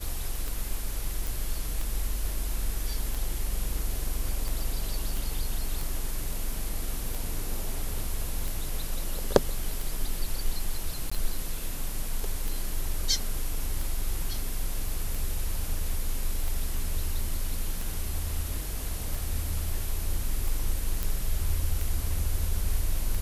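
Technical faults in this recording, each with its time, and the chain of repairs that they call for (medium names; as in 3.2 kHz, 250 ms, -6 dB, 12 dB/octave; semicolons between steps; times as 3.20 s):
tick 45 rpm
1.27 s: pop
5.17 s: pop
11.10–11.12 s: dropout 15 ms
21.03 s: pop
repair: de-click; interpolate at 11.10 s, 15 ms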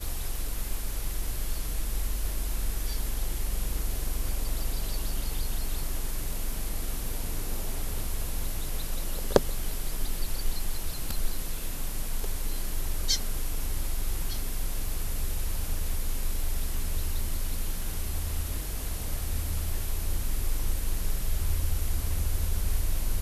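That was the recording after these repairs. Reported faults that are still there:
nothing left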